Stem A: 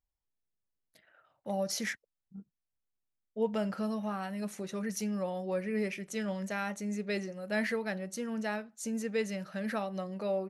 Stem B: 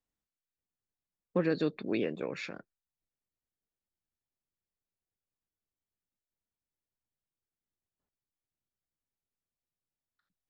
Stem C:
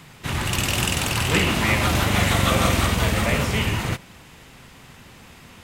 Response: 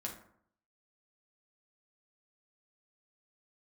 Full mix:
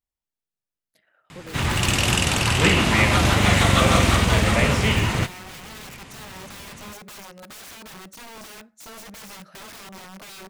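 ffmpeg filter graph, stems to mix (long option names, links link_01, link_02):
-filter_complex "[0:a]lowshelf=frequency=67:gain=-6.5,aeval=exprs='(mod(59.6*val(0)+1,2)-1)/59.6':channel_layout=same,volume=-1.5dB,asplit=2[link_01][link_02];[link_02]volume=-20dB[link_03];[1:a]volume=-12.5dB[link_04];[2:a]lowpass=10000,adelay=1300,volume=2.5dB[link_05];[3:a]atrim=start_sample=2205[link_06];[link_03][link_06]afir=irnorm=-1:irlink=0[link_07];[link_01][link_04][link_05][link_07]amix=inputs=4:normalize=0"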